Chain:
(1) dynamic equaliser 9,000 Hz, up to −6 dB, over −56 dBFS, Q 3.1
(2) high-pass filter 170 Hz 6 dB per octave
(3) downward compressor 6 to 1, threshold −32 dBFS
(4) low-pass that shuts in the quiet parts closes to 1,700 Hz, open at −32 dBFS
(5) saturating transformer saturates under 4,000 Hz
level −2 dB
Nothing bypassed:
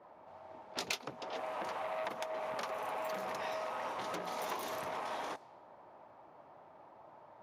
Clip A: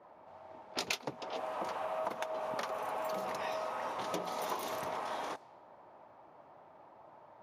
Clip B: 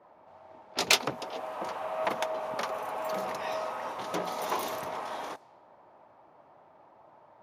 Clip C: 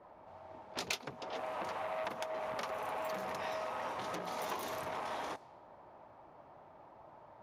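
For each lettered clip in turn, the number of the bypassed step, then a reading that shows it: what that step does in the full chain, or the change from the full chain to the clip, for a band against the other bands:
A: 5, 2 kHz band −1.5 dB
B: 3, average gain reduction 4.0 dB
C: 2, 125 Hz band +3.0 dB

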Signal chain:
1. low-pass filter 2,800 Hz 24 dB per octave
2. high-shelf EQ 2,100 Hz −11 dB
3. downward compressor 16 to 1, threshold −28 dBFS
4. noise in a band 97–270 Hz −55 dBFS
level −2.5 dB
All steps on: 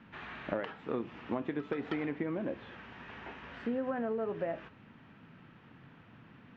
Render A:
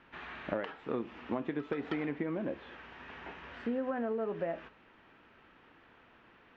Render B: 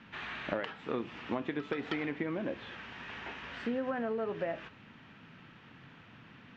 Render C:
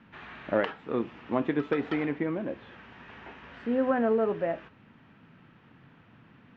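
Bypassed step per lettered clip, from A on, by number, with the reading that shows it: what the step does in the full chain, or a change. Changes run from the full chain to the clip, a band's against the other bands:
4, change in momentary loudness spread −10 LU
2, 4 kHz band +7.0 dB
3, average gain reduction 3.5 dB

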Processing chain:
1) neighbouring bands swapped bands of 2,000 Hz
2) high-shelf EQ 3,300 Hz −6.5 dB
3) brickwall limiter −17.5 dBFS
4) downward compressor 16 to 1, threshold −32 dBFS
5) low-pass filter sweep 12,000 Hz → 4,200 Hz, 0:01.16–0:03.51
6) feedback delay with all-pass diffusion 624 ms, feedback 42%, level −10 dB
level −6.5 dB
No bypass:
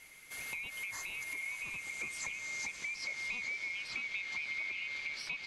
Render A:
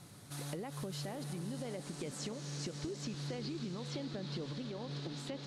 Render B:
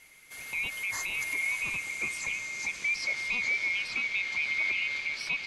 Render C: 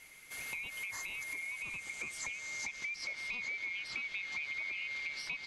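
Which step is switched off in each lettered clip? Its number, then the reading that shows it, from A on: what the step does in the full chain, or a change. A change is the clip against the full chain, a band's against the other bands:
1, 2 kHz band −28.5 dB
4, average gain reduction 7.0 dB
6, echo-to-direct ratio −9.0 dB to none audible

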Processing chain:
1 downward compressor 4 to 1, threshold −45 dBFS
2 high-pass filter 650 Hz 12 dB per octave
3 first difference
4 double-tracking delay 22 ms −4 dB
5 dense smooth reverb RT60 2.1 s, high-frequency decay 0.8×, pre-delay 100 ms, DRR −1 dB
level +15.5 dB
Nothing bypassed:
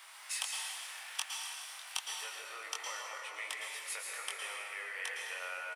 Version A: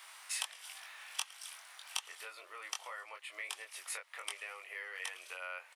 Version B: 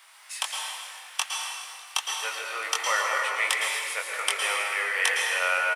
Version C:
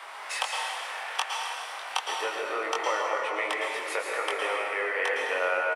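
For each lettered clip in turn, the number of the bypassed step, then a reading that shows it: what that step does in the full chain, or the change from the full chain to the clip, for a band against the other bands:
5, change in momentary loudness spread +4 LU
1, average gain reduction 10.0 dB
3, 8 kHz band −14.0 dB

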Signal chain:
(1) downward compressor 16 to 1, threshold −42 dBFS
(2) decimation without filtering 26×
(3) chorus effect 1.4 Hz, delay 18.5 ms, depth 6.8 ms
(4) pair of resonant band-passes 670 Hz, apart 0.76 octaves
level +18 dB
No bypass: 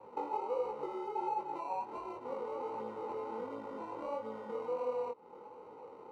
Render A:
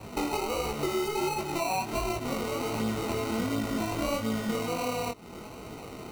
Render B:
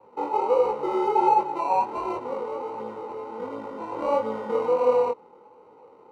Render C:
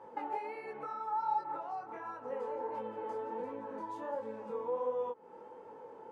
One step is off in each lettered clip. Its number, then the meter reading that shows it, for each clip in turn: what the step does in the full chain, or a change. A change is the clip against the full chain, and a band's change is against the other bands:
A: 4, 125 Hz band +14.0 dB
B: 1, average gain reduction 9.5 dB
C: 2, 2 kHz band +5.0 dB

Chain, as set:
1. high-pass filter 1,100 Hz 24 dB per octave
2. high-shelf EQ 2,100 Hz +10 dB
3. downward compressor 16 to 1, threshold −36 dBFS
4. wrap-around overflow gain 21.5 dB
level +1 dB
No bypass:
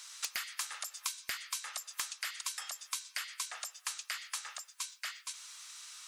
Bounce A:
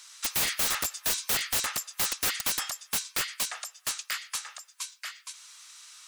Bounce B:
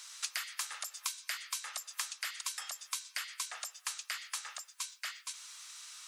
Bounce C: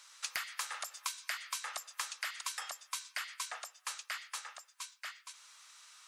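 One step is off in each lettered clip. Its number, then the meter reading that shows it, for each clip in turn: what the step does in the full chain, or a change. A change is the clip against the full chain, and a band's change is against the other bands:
3, average gain reduction 7.5 dB
4, distortion level −16 dB
2, 8 kHz band −5.0 dB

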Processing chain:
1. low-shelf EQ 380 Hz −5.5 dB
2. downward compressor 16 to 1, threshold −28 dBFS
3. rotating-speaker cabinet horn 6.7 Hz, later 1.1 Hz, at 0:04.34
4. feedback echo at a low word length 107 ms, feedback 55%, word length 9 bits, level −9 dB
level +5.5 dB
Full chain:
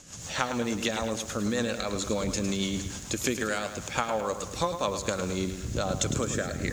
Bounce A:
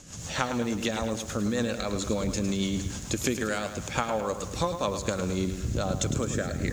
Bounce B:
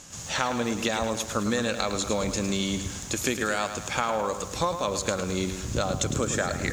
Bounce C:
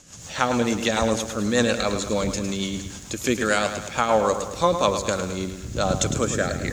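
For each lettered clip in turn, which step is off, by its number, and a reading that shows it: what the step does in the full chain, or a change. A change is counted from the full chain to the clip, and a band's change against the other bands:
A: 1, 125 Hz band +3.5 dB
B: 3, change in integrated loudness +2.5 LU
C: 2, average gain reduction 4.5 dB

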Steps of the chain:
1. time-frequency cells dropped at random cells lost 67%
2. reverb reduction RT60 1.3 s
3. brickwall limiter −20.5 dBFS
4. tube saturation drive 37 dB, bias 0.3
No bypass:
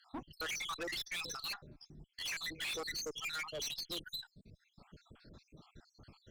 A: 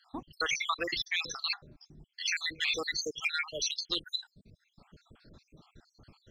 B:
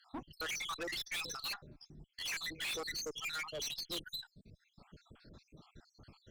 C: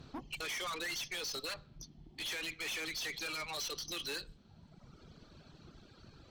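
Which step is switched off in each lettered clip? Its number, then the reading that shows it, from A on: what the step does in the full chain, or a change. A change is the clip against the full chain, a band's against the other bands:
4, change in crest factor +6.5 dB
3, change in momentary loudness spread −4 LU
1, change in momentary loudness spread +7 LU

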